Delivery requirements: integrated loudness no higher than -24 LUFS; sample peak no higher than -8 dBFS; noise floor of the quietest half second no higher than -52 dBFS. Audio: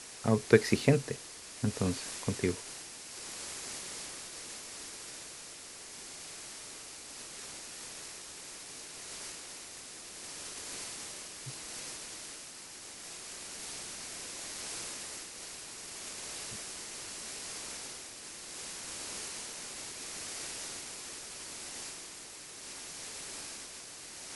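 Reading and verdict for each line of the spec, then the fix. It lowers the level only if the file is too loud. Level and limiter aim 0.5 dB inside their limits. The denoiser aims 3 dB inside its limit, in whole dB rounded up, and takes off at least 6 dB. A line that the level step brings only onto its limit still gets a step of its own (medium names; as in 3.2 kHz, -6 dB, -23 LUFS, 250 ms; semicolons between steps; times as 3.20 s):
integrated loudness -38.0 LUFS: pass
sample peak -6.5 dBFS: fail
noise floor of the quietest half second -48 dBFS: fail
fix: noise reduction 7 dB, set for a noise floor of -48 dBFS; peak limiter -8.5 dBFS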